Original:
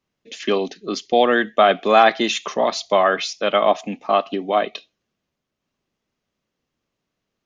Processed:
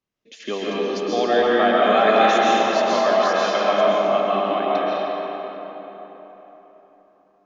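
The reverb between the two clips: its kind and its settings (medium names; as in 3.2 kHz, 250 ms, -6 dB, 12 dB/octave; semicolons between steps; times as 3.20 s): algorithmic reverb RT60 4.1 s, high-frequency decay 0.6×, pre-delay 95 ms, DRR -7 dB; trim -8 dB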